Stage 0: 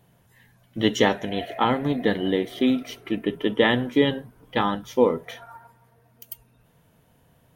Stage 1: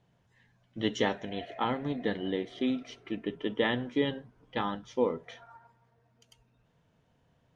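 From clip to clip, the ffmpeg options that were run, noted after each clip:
-af "lowpass=f=6.8k:w=0.5412,lowpass=f=6.8k:w=1.3066,volume=-9dB"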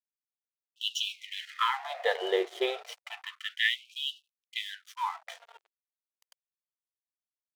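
-af "aeval=exprs='sgn(val(0))*max(abs(val(0))-0.00299,0)':c=same,equalizer=f=770:t=o:w=0.45:g=4,afftfilt=real='re*gte(b*sr/1024,340*pow(2600/340,0.5+0.5*sin(2*PI*0.3*pts/sr)))':imag='im*gte(b*sr/1024,340*pow(2600/340,0.5+0.5*sin(2*PI*0.3*pts/sr)))':win_size=1024:overlap=0.75,volume=8dB"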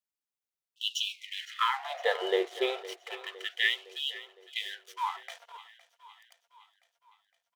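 -af "aecho=1:1:511|1022|1533|2044|2555:0.133|0.0773|0.0449|0.026|0.0151"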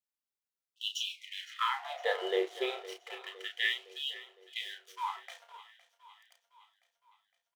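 -filter_complex "[0:a]asplit=2[a][b];[b]adelay=32,volume=-6.5dB[c];[a][c]amix=inputs=2:normalize=0,volume=-4.5dB"

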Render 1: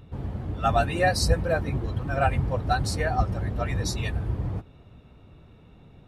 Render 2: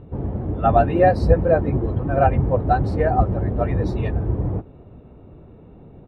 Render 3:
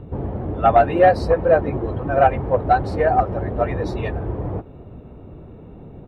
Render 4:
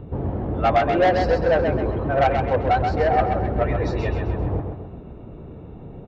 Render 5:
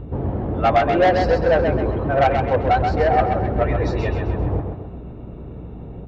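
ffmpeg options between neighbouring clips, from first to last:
-af "firequalizer=gain_entry='entry(110,0);entry(360,6);entry(1300,-5);entry(6500,-29)':delay=0.05:min_phase=1,volume=5.5dB"
-filter_complex "[0:a]asoftclip=type=tanh:threshold=-5dB,acrossover=split=400[a][b];[a]acompressor=threshold=-29dB:ratio=5[c];[c][b]amix=inputs=2:normalize=0,volume=4.5dB"
-af "aresample=16000,asoftclip=type=tanh:threshold=-13dB,aresample=44100,aecho=1:1:131|262|393|524|655:0.531|0.234|0.103|0.0452|0.0199"
-af "aeval=exprs='val(0)+0.0112*(sin(2*PI*60*n/s)+sin(2*PI*2*60*n/s)/2+sin(2*PI*3*60*n/s)/3+sin(2*PI*4*60*n/s)/4+sin(2*PI*5*60*n/s)/5)':c=same,volume=2dB"

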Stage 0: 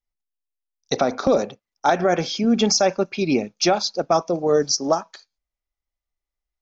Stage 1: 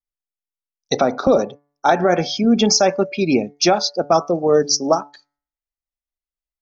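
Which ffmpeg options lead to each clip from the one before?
-af "bandreject=f=144.3:t=h:w=4,bandreject=f=288.6:t=h:w=4,bandreject=f=432.9:t=h:w=4,bandreject=f=577.2:t=h:w=4,bandreject=f=721.5:t=h:w=4,bandreject=f=865.8:t=h:w=4,bandreject=f=1.0101k:t=h:w=4,bandreject=f=1.1544k:t=h:w=4,bandreject=f=1.2987k:t=h:w=4,bandreject=f=1.443k:t=h:w=4,bandreject=f=1.5873k:t=h:w=4,bandreject=f=1.7316k:t=h:w=4,bandreject=f=1.8759k:t=h:w=4,bandreject=f=2.0202k:t=h:w=4,bandreject=f=2.1645k:t=h:w=4,afftdn=nr=13:nf=-35,volume=3.5dB"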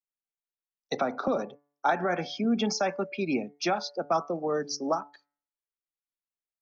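-filter_complex "[0:a]acrossover=split=180 3000:gain=0.178 1 0.251[a][b][c];[a][b][c]amix=inputs=3:normalize=0,acrossover=split=250|810[d][e][f];[e]acompressor=threshold=-26dB:ratio=6[g];[d][g][f]amix=inputs=3:normalize=0,volume=-6.5dB"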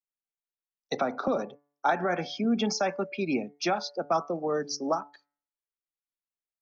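-af anull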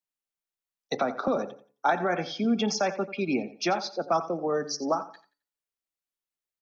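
-af "aecho=1:1:88|176|264:0.178|0.048|0.013,volume=1dB"

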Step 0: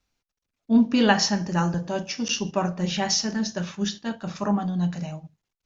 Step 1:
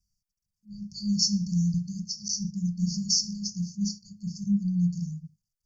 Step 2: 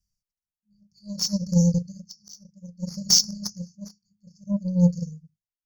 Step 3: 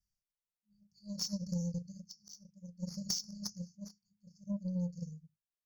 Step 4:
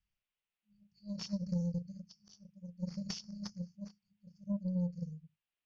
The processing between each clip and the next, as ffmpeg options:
-af "afftfilt=real='re*(1-between(b*sr/4096,210,4400))':imag='im*(1-between(b*sr/4096,210,4400))':win_size=4096:overlap=0.75"
-af "aeval=exprs='0.266*(cos(1*acos(clip(val(0)/0.266,-1,1)))-cos(1*PI/2))+0.0266*(cos(7*acos(clip(val(0)/0.266,-1,1)))-cos(7*PI/2))':c=same,aeval=exprs='val(0)*pow(10,-21*(0.5-0.5*cos(2*PI*0.61*n/s))/20)':c=same,volume=9dB"
-af "acompressor=threshold=-24dB:ratio=16,volume=-8dB"
-af "lowpass=f=2.8k:t=q:w=2.7,volume=1.5dB"

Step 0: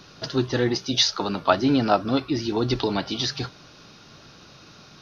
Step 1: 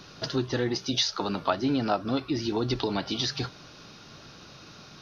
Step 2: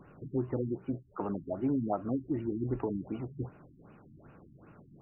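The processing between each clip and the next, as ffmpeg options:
-af "acompressor=threshold=-27dB:ratio=2"
-af "equalizer=f=3.4k:t=o:w=2.4:g=-11,afftfilt=real='re*lt(b*sr/1024,330*pow(3000/330,0.5+0.5*sin(2*PI*2.6*pts/sr)))':imag='im*lt(b*sr/1024,330*pow(3000/330,0.5+0.5*sin(2*PI*2.6*pts/sr)))':win_size=1024:overlap=0.75,volume=-3.5dB"

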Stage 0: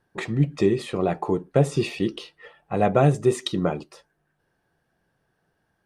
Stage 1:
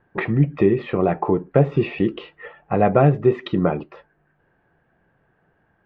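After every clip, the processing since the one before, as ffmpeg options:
-filter_complex "[0:a]lowpass=f=2.5k:w=0.5412,lowpass=f=2.5k:w=1.3066,asplit=2[a][b];[b]acompressor=threshold=-28dB:ratio=6,volume=2dB[c];[a][c]amix=inputs=2:normalize=0,volume=1dB"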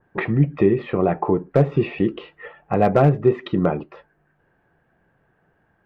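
-af "asoftclip=type=hard:threshold=-6dB,adynamicequalizer=threshold=0.0112:dfrequency=2200:dqfactor=0.7:tfrequency=2200:tqfactor=0.7:attack=5:release=100:ratio=0.375:range=2:mode=cutabove:tftype=highshelf"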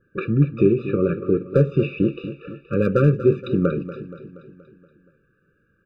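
-af "aecho=1:1:237|474|711|948|1185|1422:0.211|0.118|0.0663|0.0371|0.0208|0.0116,afftfilt=real='re*eq(mod(floor(b*sr/1024/580),2),0)':imag='im*eq(mod(floor(b*sr/1024/580),2),0)':win_size=1024:overlap=0.75"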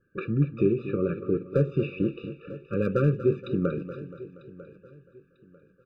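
-af "aecho=1:1:946|1892|2838:0.112|0.0359|0.0115,volume=-6.5dB"

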